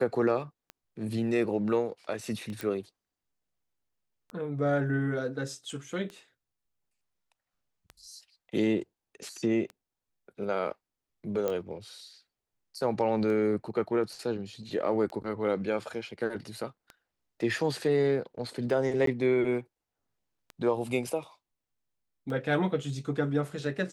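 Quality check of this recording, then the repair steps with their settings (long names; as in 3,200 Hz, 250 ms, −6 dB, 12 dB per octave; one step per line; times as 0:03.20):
scratch tick 33 1/3 rpm −27 dBFS
0:02.61: click
0:11.48: click −17 dBFS
0:19.06–0:19.07: drop-out 13 ms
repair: click removal
repair the gap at 0:19.06, 13 ms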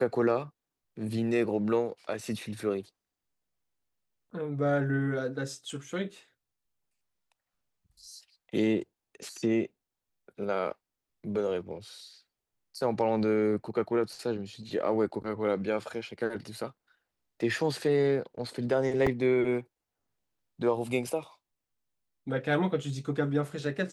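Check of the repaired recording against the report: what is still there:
none of them is left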